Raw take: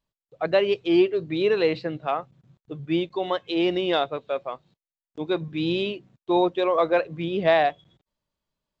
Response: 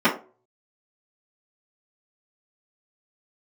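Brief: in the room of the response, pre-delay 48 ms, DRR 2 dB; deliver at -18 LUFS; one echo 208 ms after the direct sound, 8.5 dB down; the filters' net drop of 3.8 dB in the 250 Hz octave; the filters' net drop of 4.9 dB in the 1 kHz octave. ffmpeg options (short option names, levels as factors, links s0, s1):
-filter_complex "[0:a]equalizer=f=250:t=o:g=-6,equalizer=f=1000:t=o:g=-7,aecho=1:1:208:0.376,asplit=2[s0][s1];[1:a]atrim=start_sample=2205,adelay=48[s2];[s1][s2]afir=irnorm=-1:irlink=0,volume=0.0841[s3];[s0][s3]amix=inputs=2:normalize=0,volume=2.11"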